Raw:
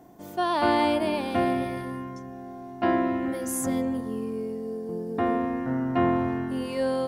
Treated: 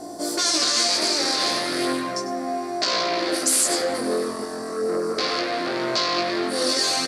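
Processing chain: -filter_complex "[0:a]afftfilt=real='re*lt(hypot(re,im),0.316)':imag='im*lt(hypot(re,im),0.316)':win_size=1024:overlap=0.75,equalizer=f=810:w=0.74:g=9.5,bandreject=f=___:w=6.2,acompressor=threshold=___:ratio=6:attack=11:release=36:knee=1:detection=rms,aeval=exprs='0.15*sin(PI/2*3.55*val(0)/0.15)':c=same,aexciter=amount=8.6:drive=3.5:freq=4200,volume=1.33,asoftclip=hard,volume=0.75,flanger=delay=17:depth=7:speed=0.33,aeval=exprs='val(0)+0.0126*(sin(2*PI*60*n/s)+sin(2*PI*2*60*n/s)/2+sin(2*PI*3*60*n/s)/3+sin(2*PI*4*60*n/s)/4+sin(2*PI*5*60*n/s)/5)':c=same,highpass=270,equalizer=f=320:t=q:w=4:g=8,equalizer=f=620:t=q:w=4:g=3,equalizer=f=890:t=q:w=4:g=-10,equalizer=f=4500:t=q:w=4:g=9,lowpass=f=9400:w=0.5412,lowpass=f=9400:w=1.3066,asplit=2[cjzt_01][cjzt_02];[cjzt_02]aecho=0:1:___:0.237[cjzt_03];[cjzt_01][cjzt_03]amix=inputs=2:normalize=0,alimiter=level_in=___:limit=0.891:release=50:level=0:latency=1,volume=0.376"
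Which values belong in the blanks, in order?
6500, 0.0447, 98, 2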